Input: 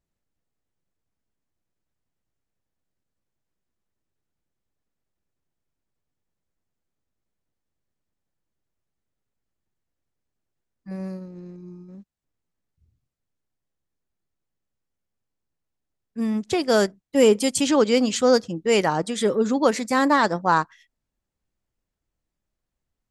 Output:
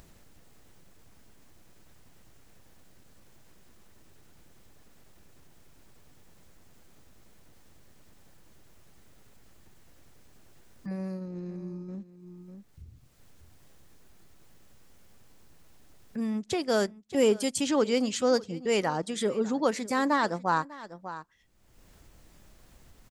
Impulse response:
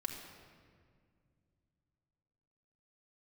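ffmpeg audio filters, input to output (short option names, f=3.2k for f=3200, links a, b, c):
-filter_complex "[0:a]asplit=2[a][b];[b]aecho=0:1:597:0.0944[c];[a][c]amix=inputs=2:normalize=0,acompressor=mode=upward:threshold=-21dB:ratio=2.5,volume=-7dB"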